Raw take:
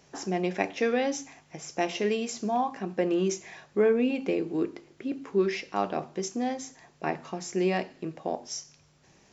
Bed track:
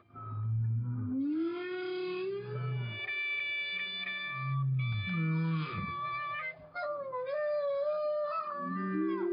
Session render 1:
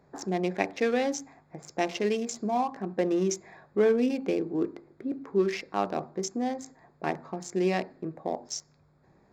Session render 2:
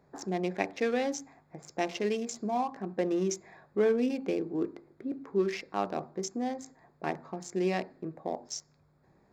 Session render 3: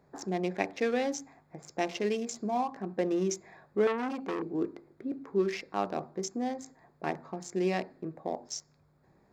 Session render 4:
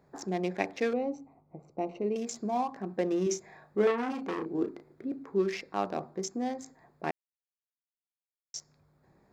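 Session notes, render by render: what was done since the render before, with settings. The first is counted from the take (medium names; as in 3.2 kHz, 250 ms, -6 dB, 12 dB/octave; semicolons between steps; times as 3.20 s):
local Wiener filter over 15 samples; dynamic bell 5.6 kHz, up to +4 dB, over -53 dBFS, Q 0.8
trim -3 dB
3.87–4.42 s: transformer saturation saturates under 1.4 kHz
0.93–2.16 s: boxcar filter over 26 samples; 3.23–5.09 s: doubling 34 ms -7.5 dB; 7.11–8.54 s: mute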